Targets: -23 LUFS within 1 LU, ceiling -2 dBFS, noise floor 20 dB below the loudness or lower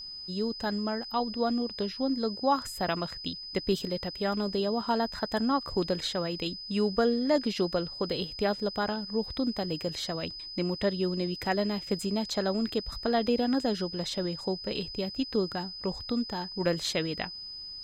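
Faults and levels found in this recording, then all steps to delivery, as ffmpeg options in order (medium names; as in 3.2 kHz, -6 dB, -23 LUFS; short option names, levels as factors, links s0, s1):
steady tone 5 kHz; tone level -39 dBFS; loudness -30.5 LUFS; peak level -13.5 dBFS; loudness target -23.0 LUFS
-> -af "bandreject=f=5000:w=30"
-af "volume=2.37"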